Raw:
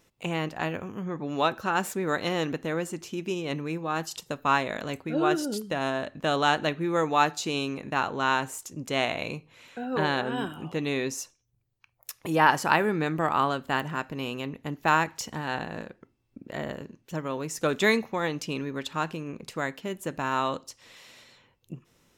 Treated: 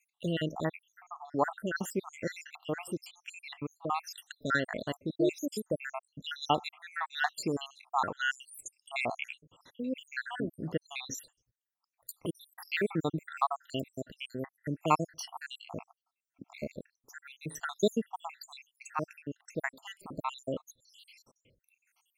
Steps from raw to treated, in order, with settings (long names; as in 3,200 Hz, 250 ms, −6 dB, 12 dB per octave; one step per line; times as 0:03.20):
time-frequency cells dropped at random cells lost 80%